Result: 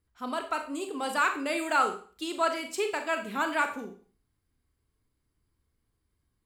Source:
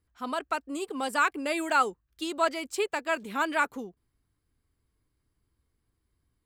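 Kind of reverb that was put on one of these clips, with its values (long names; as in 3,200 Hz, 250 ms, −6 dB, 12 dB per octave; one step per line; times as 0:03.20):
four-comb reverb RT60 0.42 s, combs from 29 ms, DRR 5.5 dB
level −1.5 dB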